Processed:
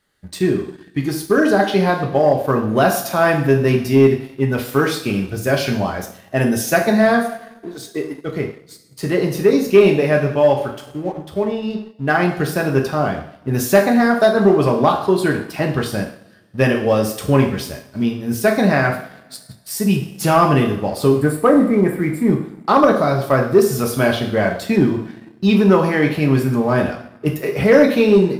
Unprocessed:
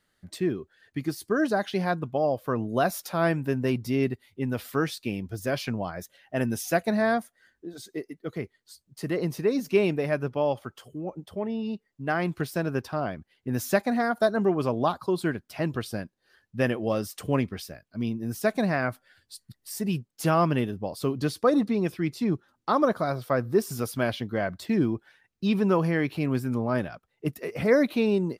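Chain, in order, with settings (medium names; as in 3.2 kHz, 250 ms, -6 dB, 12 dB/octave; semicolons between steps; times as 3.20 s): time-frequency box 21.12–22.30 s, 2.4–7.1 kHz -20 dB; two-slope reverb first 0.6 s, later 1.9 s, DRR 1 dB; waveshaping leveller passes 1; trim +5 dB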